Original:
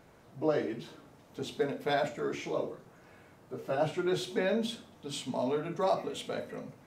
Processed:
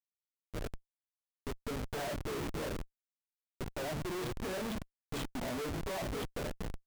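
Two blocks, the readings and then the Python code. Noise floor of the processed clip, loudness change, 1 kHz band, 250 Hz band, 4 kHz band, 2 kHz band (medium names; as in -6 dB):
under -85 dBFS, -6.0 dB, -7.0 dB, -5.5 dB, -4.5 dB, -4.0 dB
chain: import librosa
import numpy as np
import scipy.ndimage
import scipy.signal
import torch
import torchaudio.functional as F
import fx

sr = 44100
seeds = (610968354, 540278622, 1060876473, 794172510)

y = fx.fade_in_head(x, sr, length_s=2.2)
y = fx.hum_notches(y, sr, base_hz=50, count=4)
y = fx.dispersion(y, sr, late='lows', ms=82.0, hz=2600.0)
y = fx.schmitt(y, sr, flips_db=-36.0)
y = y * librosa.db_to_amplitude(-2.0)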